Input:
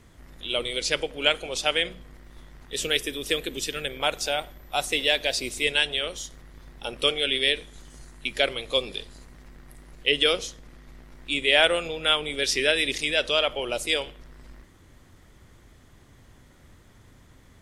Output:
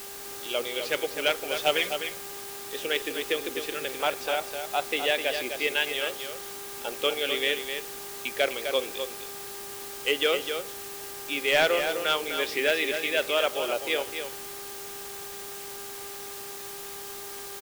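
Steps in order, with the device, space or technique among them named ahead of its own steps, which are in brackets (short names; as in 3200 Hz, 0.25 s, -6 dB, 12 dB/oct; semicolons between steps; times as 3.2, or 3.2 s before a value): aircraft radio (BPF 300–2500 Hz; hard clip -15 dBFS, distortion -19 dB; buzz 400 Hz, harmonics 4, -48 dBFS -6 dB/oct; white noise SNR 10 dB); 1.53–1.93 comb 6.9 ms, depth 79%; echo 0.255 s -7.5 dB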